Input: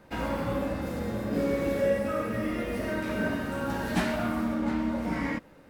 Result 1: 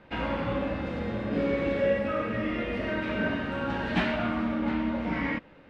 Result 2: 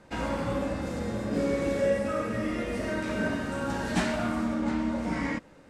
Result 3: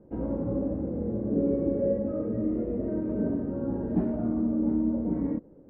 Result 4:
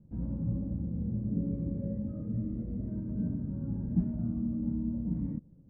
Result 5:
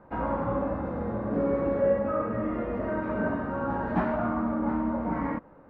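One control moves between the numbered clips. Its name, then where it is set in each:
synth low-pass, frequency: 3000, 7900, 400, 160, 1100 Hz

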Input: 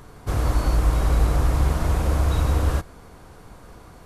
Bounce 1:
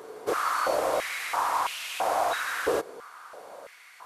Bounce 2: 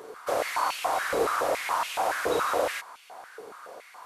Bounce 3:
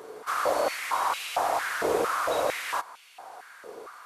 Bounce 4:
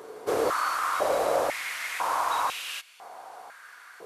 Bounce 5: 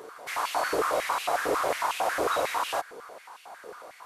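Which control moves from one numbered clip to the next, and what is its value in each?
stepped high-pass, rate: 3, 7.1, 4.4, 2, 11 Hz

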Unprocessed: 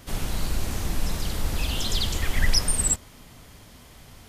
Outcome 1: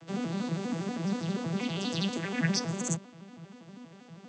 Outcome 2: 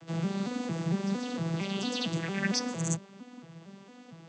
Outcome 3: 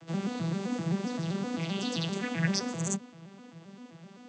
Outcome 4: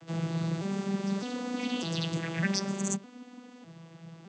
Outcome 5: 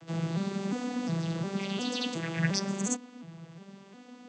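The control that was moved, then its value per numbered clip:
arpeggiated vocoder, a note every: 80, 228, 130, 606, 357 ms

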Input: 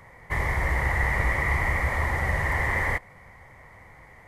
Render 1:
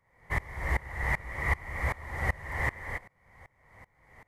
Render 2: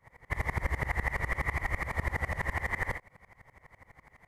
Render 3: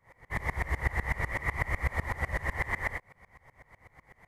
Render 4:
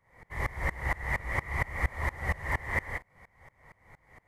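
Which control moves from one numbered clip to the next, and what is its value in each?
dB-ramp tremolo, rate: 2.6, 12, 8, 4.3 Hz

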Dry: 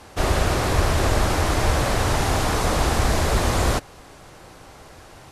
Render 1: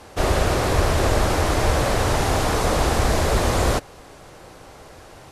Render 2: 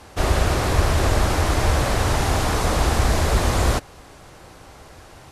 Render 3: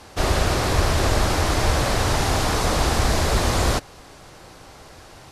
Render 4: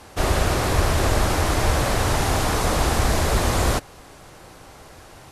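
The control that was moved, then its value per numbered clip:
bell, frequency: 500, 63, 4700, 14000 Hz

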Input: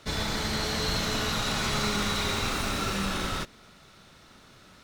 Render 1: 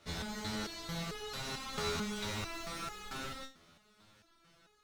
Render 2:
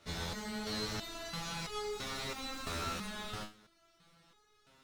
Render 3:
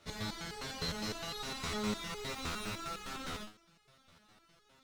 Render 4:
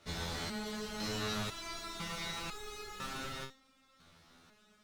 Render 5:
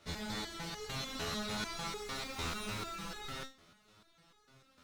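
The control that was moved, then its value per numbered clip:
stepped resonator, rate: 4.5, 3, 9.8, 2, 6.7 Hz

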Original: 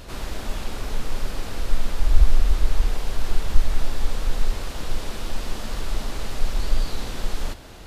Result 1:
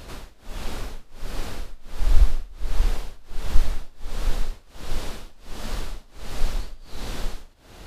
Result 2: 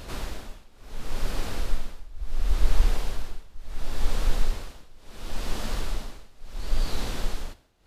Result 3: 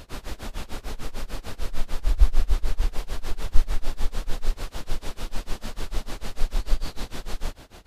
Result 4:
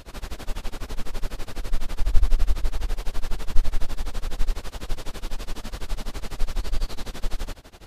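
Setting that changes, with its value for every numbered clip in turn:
tremolo, rate: 1.4, 0.71, 6.7, 12 Hz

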